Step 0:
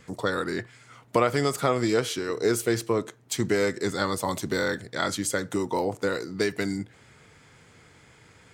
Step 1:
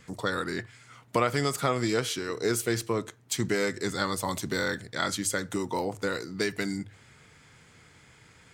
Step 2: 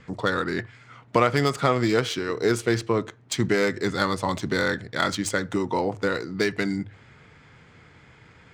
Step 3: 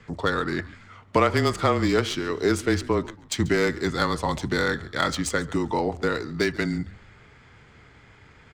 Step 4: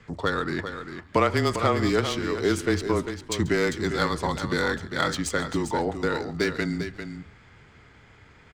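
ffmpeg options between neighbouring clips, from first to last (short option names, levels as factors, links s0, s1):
-af "equalizer=f=480:w=0.59:g=-4.5,bandreject=f=50:t=h:w=6,bandreject=f=100:t=h:w=6"
-af "adynamicsmooth=sensitivity=3:basefreq=3600,volume=1.88"
-filter_complex "[0:a]asplit=4[s0][s1][s2][s3];[s1]adelay=139,afreqshift=-74,volume=0.1[s4];[s2]adelay=278,afreqshift=-148,volume=0.0351[s5];[s3]adelay=417,afreqshift=-222,volume=0.0123[s6];[s0][s4][s5][s6]amix=inputs=4:normalize=0,afreqshift=-23"
-af "aecho=1:1:398:0.355,volume=0.841"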